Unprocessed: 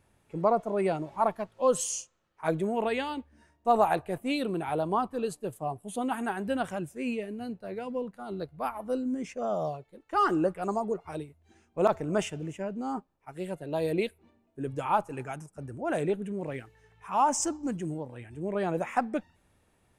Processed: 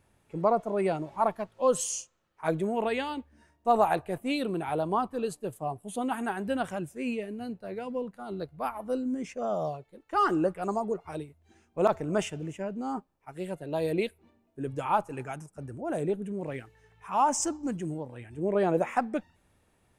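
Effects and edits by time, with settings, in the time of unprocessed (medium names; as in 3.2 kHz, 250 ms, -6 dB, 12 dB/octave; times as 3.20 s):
15.80–16.45 s: peaking EQ 2.3 kHz -11 dB -> -1.5 dB 2.4 oct
18.38–18.94 s: peaking EQ 440 Hz +5.5 dB 2 oct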